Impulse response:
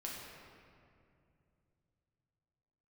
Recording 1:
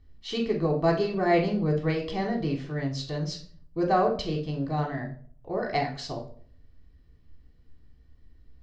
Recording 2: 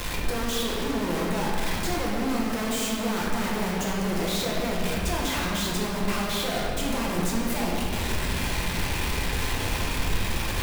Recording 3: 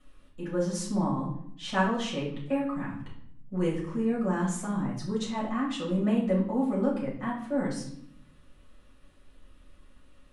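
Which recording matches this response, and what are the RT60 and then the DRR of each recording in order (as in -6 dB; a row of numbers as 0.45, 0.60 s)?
2; 0.50, 2.5, 0.70 s; -1.0, -4.0, -7.0 dB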